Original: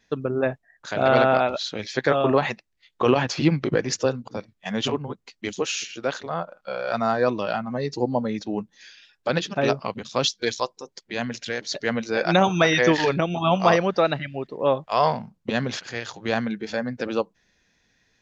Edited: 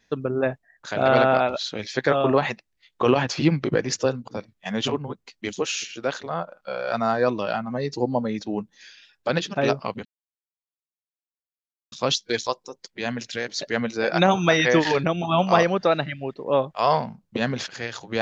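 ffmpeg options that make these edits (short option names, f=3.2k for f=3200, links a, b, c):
-filter_complex "[0:a]asplit=2[a][b];[a]atrim=end=10.05,asetpts=PTS-STARTPTS,afade=t=out:st=10.046:d=0.004:c=hsin,apad=pad_dur=1.87[c];[b]atrim=start=10.05,asetpts=PTS-STARTPTS,afade=t=in:d=0.004:c=hsin[d];[c][d]concat=n=2:v=0:a=1"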